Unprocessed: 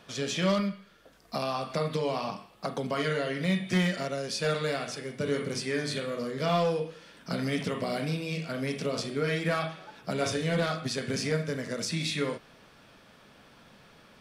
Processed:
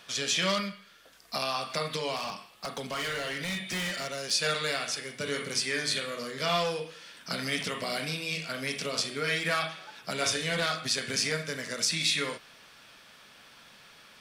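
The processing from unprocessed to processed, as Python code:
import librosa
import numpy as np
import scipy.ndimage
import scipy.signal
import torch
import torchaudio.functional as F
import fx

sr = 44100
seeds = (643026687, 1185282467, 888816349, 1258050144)

y = fx.tilt_shelf(x, sr, db=-7.5, hz=970.0)
y = fx.overload_stage(y, sr, gain_db=30.0, at=(2.16, 4.31))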